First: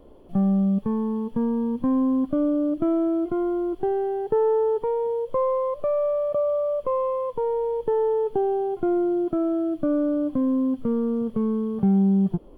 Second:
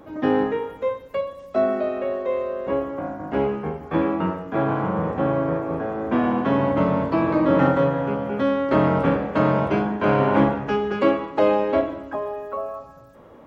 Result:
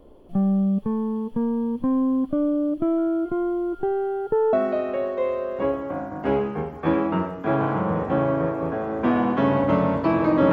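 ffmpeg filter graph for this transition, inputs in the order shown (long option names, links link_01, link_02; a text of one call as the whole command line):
ffmpeg -i cue0.wav -i cue1.wav -filter_complex "[0:a]asettb=1/sr,asplit=3[link_01][link_02][link_03];[link_01]atrim=end=2.984[link_04];[link_02]atrim=start=2.98:end=4.53,asetpts=PTS-STARTPTS,afade=type=in:duration=0.004:curve=qsin,afade=type=out:start_time=1.546:duration=0.004:curve=qsin,aeval=exprs='val(0)+0.00562*sin(2*PI*1400*n/s)':channel_layout=same[link_05];[link_03]atrim=start=4.526[link_06];[link_04][link_05]acrossfade=duration=0.004:curve1=hsin:curve2=qsin[link_07];[link_07][link_06]acrossfade=duration=0.004:curve1=qsin:curve2=hsin,apad=whole_dur=10.52,atrim=end=10.52,atrim=end=4.532[link_08];[1:a]atrim=start=1.608:end=7.6[link_09];[link_08][link_09]acrossfade=duration=0.004:curve1=hsin:curve2=hsin" out.wav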